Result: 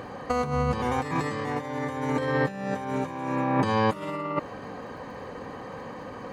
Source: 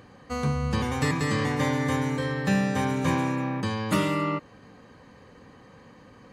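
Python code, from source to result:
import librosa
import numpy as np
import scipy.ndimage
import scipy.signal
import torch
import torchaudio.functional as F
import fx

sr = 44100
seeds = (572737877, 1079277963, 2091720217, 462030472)

y = fx.peak_eq(x, sr, hz=720.0, db=10.0, octaves=2.4)
y = fx.over_compress(y, sr, threshold_db=-26.0, ratio=-0.5)
y = fx.dmg_crackle(y, sr, seeds[0], per_s=97.0, level_db=-52.0)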